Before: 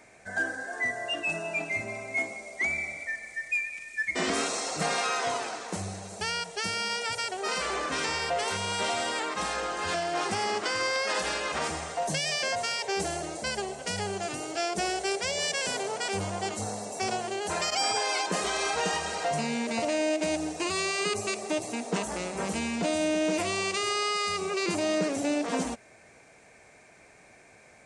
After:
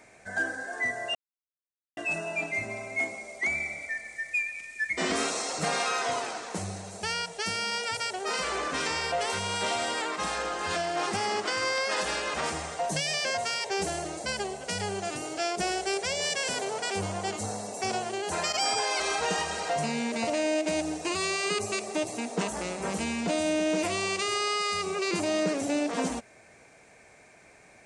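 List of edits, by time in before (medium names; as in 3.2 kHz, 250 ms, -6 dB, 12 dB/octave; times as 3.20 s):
1.15 s: insert silence 0.82 s
18.18–18.55 s: delete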